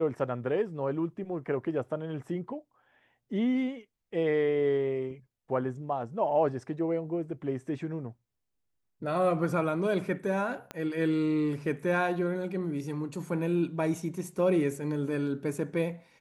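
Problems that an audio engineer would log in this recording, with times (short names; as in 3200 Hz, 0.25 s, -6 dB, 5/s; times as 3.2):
10.71 pop -22 dBFS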